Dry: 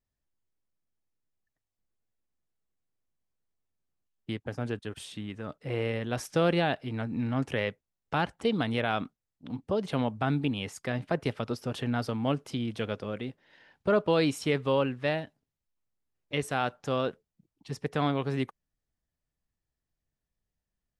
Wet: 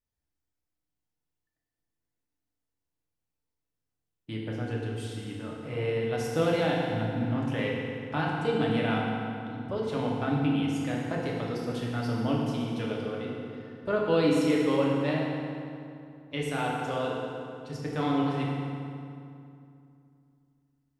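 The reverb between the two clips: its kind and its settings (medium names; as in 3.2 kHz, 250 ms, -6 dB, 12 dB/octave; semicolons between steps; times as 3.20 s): FDN reverb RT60 2.6 s, low-frequency decay 1.25×, high-frequency decay 0.7×, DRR -4 dB; trim -5.5 dB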